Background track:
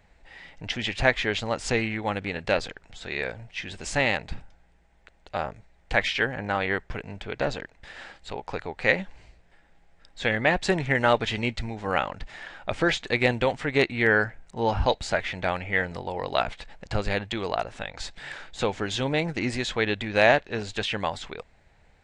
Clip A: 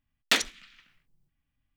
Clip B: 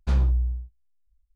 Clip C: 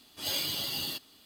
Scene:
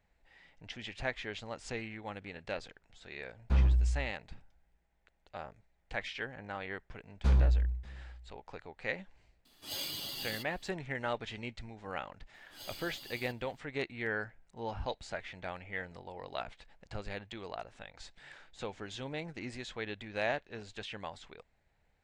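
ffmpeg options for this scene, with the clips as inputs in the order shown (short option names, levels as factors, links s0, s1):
-filter_complex "[2:a]asplit=2[s0][s1];[3:a]asplit=2[s2][s3];[0:a]volume=0.188[s4];[s0]acrossover=split=3100[s5][s6];[s6]acompressor=threshold=0.00141:ratio=4:attack=1:release=60[s7];[s5][s7]amix=inputs=2:normalize=0[s8];[s1]aecho=1:1:591:0.0668[s9];[s8]atrim=end=1.35,asetpts=PTS-STARTPTS,volume=0.596,afade=t=in:d=0.004:c=hsin,afade=t=out:st=1.346:d=0.004:c=hsin,adelay=3430[s10];[s9]atrim=end=1.35,asetpts=PTS-STARTPTS,volume=0.631,afade=t=in:d=0.004:c=hsin,afade=t=out:st=1.346:d=0.004:c=hsin,adelay=7170[s11];[s2]atrim=end=1.25,asetpts=PTS-STARTPTS,volume=0.447,afade=t=in:d=0.004:c=hsin,afade=t=out:st=1.246:d=0.004:c=hsin,adelay=9450[s12];[s3]atrim=end=1.25,asetpts=PTS-STARTPTS,volume=0.158,afade=t=in:d=0.004:c=hsin,afade=t=out:st=1.246:d=0.004:c=hsin,adelay=12340[s13];[s4][s10][s11][s12][s13]amix=inputs=5:normalize=0"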